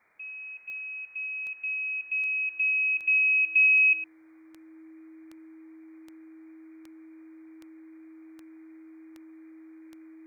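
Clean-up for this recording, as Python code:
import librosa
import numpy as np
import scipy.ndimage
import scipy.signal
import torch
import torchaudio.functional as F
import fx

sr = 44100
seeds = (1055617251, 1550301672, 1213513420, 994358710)

y = fx.fix_declick_ar(x, sr, threshold=10.0)
y = fx.notch(y, sr, hz=320.0, q=30.0)
y = fx.noise_reduce(y, sr, print_start_s=4.04, print_end_s=4.54, reduce_db=23.0)
y = fx.fix_echo_inverse(y, sr, delay_ms=108, level_db=-14.5)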